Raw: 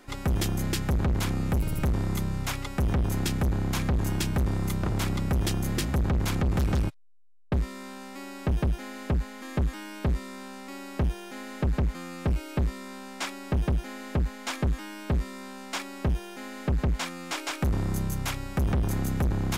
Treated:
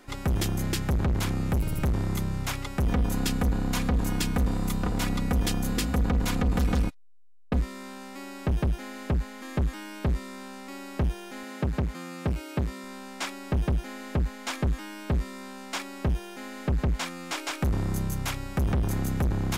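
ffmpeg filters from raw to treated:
-filter_complex "[0:a]asettb=1/sr,asplit=3[a][b][c];[a]atrim=end=2.864[d];[b]atrim=start=2.86:end=7.61,asetpts=PTS-STARTPTS,afade=t=in:d=0.004:c=qsin,afade=t=out:st=4.746:d=0.004:c=qsin,aecho=1:1:4.1:0.58,atrim=end_sample=209475[e];[c]atrim=start=7.606[f];[d][e]acrossfade=d=0.004:c1=hsin:c2=qsin[g];[g][f]acrossfade=d=0.004:c1=qsin:c2=hsin,asettb=1/sr,asplit=3[h][i][j];[h]atrim=end=11.434[k];[i]atrim=start=11.43:end=12.84,asetpts=PTS-STARTPTS,afade=t=in:d=0.004:c=qsin,afade=t=out:st=1.406:d=0.004:c=qsin,highpass=64[l];[j]atrim=start=12.836[m];[k][l]acrossfade=d=0.004:c1=hsin:c2=qsin[n];[n][m]acrossfade=d=0.004:c1=qsin:c2=hsin"

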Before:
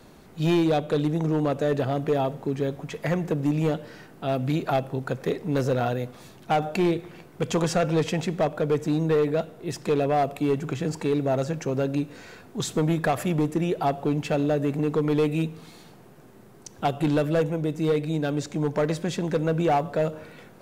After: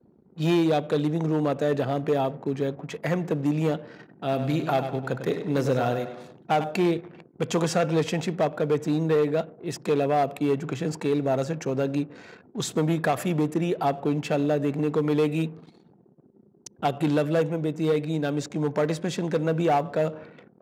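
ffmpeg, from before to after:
-filter_complex "[0:a]asettb=1/sr,asplit=3[a][b][c];[a]atrim=end=3.884[d];[b]atrim=start=3.88:end=6.64,asetpts=PTS-STARTPTS,afade=t=in:d=0.004:c=qsin,afade=t=out:st=2.756:d=0.004:c=qsin,aecho=1:1:99|198|297|396|495:0.355|0.17|0.0817|0.0392|0.0188,atrim=end_sample=121716[e];[c]atrim=start=6.636[f];[d][e]acrossfade=d=0.004:c1=hsin:c2=qsin[g];[g][f]acrossfade=d=0.004:c1=qsin:c2=hsin,anlmdn=0.0631,highpass=120"

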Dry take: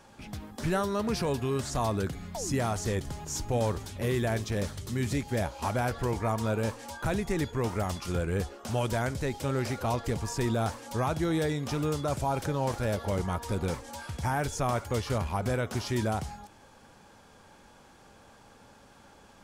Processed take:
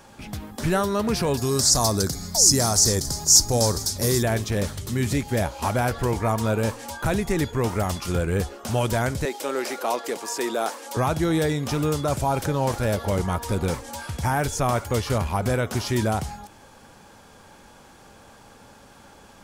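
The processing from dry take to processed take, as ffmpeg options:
-filter_complex "[0:a]asettb=1/sr,asplit=3[a][b][c];[a]atrim=end=1.374[d];[b]atrim=start=1.37:end=4.23,asetpts=PTS-STARTPTS,afade=t=in:d=0.004:c=qsin,afade=t=out:st=2.856:d=0.004:c=qsin,highshelf=f=3.8k:t=q:w=3:g=10[e];[c]atrim=start=4.226[f];[d][e]acrossfade=d=0.004:c1=hsin:c2=qsin[g];[g][f]acrossfade=d=0.004:c1=qsin:c2=hsin,asettb=1/sr,asplit=3[h][i][j];[h]atrim=end=9.254[k];[i]atrim=start=9.25:end=10.97,asetpts=PTS-STARTPTS,afade=t=in:d=0.004:c=qsin,afade=t=out:st=1.716:d=0.004:c=qsin,highpass=f=310:w=0.5412,highpass=f=310:w=1.3066[l];[j]atrim=start=10.966[m];[k][l]acrossfade=d=0.004:c1=hsin:c2=qsin[n];[n][m]acrossfade=d=0.004:c1=qsin:c2=hsin,highshelf=f=11k:g=7,volume=6dB"

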